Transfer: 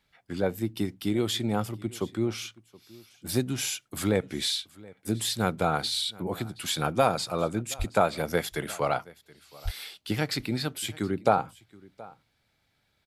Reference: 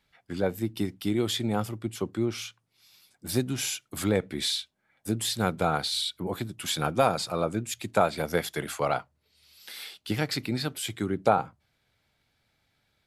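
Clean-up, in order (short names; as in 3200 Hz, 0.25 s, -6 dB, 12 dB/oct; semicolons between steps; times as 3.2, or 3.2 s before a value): de-plosive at 7.78/9.64; inverse comb 0.724 s -22.5 dB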